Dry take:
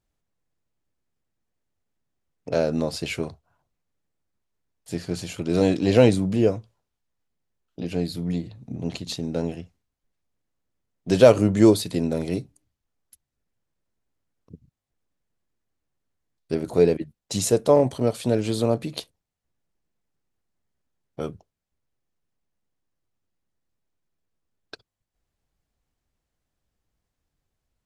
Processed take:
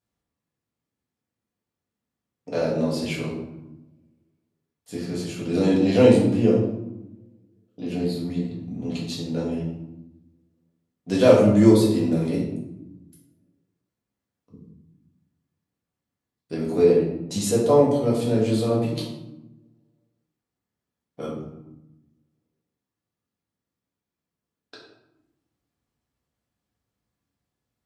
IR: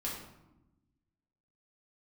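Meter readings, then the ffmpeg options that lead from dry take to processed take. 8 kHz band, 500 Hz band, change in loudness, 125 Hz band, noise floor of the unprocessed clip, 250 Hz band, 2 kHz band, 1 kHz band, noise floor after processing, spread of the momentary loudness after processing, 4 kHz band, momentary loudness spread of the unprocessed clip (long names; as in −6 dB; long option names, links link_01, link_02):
−2.5 dB, +1.0 dB, +1.0 dB, +1.0 dB, −83 dBFS, +2.5 dB, −1.0 dB, +0.5 dB, below −85 dBFS, 20 LU, −1.0 dB, 18 LU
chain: -filter_complex "[0:a]highpass=100[link_01];[1:a]atrim=start_sample=2205[link_02];[link_01][link_02]afir=irnorm=-1:irlink=0,volume=-2.5dB"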